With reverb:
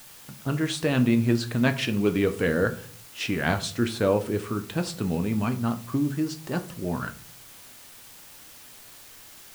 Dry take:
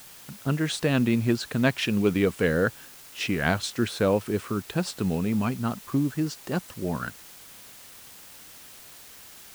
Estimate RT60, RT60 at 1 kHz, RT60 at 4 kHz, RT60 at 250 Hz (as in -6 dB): 0.45 s, 0.40 s, 0.30 s, 0.65 s